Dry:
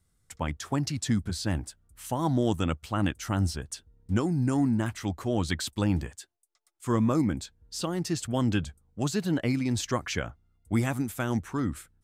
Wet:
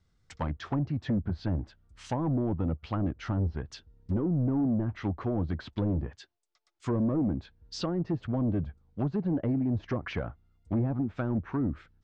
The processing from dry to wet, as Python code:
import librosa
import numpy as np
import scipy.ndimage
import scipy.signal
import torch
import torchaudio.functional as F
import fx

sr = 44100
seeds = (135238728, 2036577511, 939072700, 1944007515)

y = np.clip(x, -10.0 ** (-25.0 / 20.0), 10.0 ** (-25.0 / 20.0))
y = scipy.signal.sosfilt(scipy.signal.butter(4, 5600.0, 'lowpass', fs=sr, output='sos'), y)
y = fx.env_lowpass_down(y, sr, base_hz=600.0, full_db=-26.5)
y = y * 10.0 ** (1.5 / 20.0)